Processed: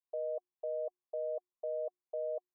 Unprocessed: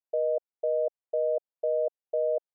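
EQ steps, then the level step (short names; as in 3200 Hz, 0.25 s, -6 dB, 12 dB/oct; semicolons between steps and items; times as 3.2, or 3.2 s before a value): vocal tract filter a; bell 710 Hz -14.5 dB 0.43 oct; notches 60/120/180/240/300/360 Hz; +11.5 dB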